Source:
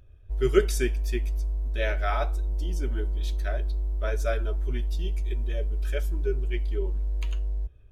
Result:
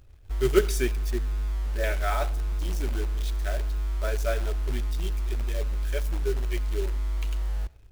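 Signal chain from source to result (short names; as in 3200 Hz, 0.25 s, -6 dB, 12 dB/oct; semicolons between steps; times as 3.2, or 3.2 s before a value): 1.11–1.84 steep low-pass 1800 Hz; short-mantissa float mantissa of 2-bit; on a send: reverb RT60 0.40 s, pre-delay 84 ms, DRR 21 dB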